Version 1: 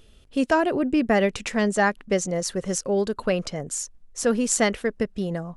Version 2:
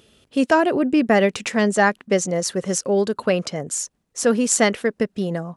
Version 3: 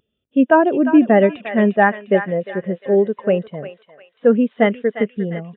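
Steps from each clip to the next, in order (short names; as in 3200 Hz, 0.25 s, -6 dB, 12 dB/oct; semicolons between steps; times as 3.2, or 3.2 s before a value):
HPF 130 Hz 12 dB/oct; gain +4 dB
downsampling 8000 Hz; thinning echo 0.352 s, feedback 63%, high-pass 940 Hz, level -5 dB; spectral expander 1.5:1; gain +2 dB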